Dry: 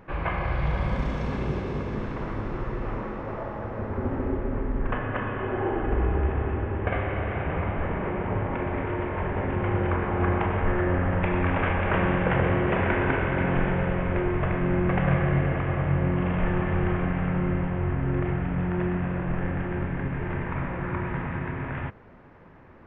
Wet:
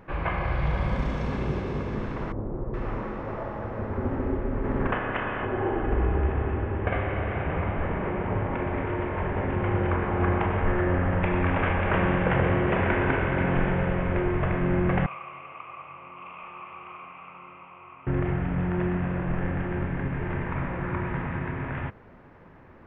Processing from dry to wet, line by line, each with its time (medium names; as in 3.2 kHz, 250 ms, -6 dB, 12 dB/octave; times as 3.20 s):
2.32–2.74 s: Chebyshev low-pass 610 Hz
4.63–5.44 s: spectral peaks clipped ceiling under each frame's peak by 13 dB
15.06–18.07 s: two resonant band-passes 1.7 kHz, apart 1.1 oct